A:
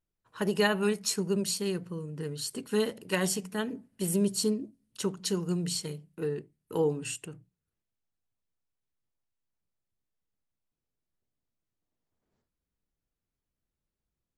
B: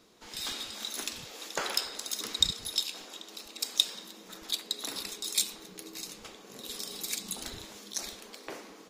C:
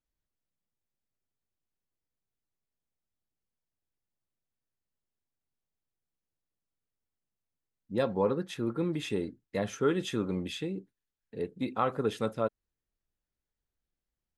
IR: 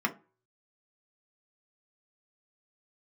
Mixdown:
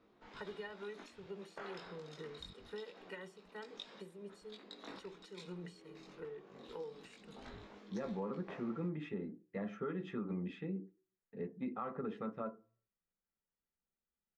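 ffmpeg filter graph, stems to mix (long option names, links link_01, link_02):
-filter_complex "[0:a]aemphasis=mode=production:type=bsi,aecho=1:1:2.1:0.67,acompressor=threshold=-34dB:ratio=6,volume=-11dB,asplit=3[link_01][link_02][link_03];[link_02]volume=-12dB[link_04];[1:a]flanger=delay=19.5:depth=2.1:speed=0.25,volume=-2.5dB[link_05];[2:a]volume=-11dB,asplit=2[link_06][link_07];[link_07]volume=-6.5dB[link_08];[link_03]apad=whole_len=392099[link_09];[link_05][link_09]sidechaincompress=threshold=-52dB:ratio=8:attack=36:release=416[link_10];[3:a]atrim=start_sample=2205[link_11];[link_04][link_08]amix=inputs=2:normalize=0[link_12];[link_12][link_11]afir=irnorm=-1:irlink=0[link_13];[link_01][link_10][link_06][link_13]amix=inputs=4:normalize=0,lowpass=1900,alimiter=level_in=7dB:limit=-24dB:level=0:latency=1:release=153,volume=-7dB"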